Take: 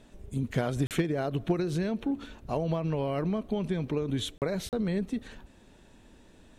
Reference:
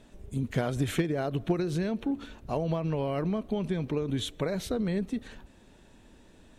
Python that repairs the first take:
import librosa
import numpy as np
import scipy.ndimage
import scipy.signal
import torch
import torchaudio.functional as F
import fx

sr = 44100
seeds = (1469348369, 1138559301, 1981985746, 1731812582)

y = fx.fix_interpolate(x, sr, at_s=(0.87, 4.38, 4.69), length_ms=38.0)